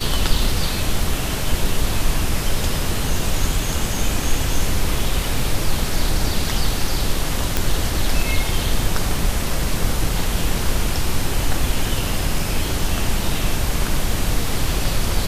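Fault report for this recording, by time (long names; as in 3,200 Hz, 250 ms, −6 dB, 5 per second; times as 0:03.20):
0:07.57: click −2 dBFS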